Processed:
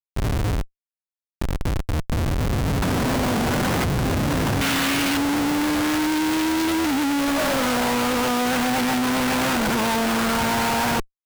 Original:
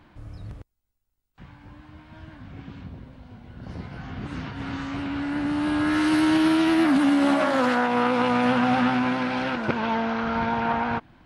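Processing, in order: 2.82–3.84 s: overdrive pedal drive 27 dB, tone 1.5 kHz, clips at -24 dBFS; 4.61–5.17 s: frequency weighting D; Schmitt trigger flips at -40 dBFS; trim +3.5 dB

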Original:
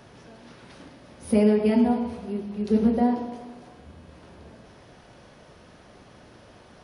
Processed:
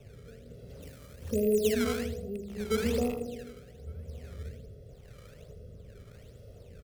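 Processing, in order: rattle on loud lows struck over -28 dBFS, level -15 dBFS; FFT filter 100 Hz 0 dB, 220 Hz -10 dB, 430 Hz +2 dB, 880 Hz -28 dB, 6.4 kHz -14 dB; in parallel at +2.5 dB: compression, threshold -39 dBFS, peak gain reduction 19.5 dB; on the sum: comb 1.5 ms, depth 81%; 2.47–3.17 s: mains buzz 60 Hz, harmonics 23, -49 dBFS -1 dB/octave; decimation with a swept rate 14×, swing 160% 1.2 Hz; on a send: feedback delay 80 ms, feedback 28%, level -11.5 dB; on the sum: rotary cabinet horn 0.9 Hz; 0.82–1.73 s: treble shelf 6.5 kHz +9.5 dB; echo from a far wall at 200 m, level -26 dB; trim -2 dB

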